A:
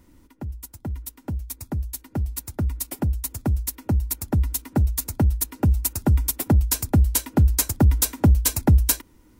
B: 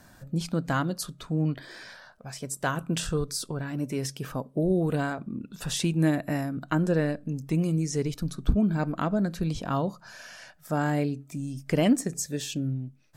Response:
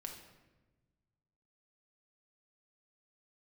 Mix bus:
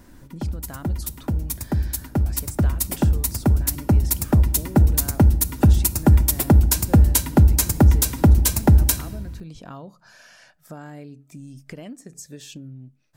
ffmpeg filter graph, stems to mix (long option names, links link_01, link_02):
-filter_complex "[0:a]volume=3dB,asplit=2[link_01][link_02];[link_02]volume=-5dB[link_03];[1:a]acompressor=threshold=-31dB:ratio=6,volume=-4dB[link_04];[2:a]atrim=start_sample=2205[link_05];[link_03][link_05]afir=irnorm=-1:irlink=0[link_06];[link_01][link_04][link_06]amix=inputs=3:normalize=0,alimiter=limit=-5dB:level=0:latency=1:release=191"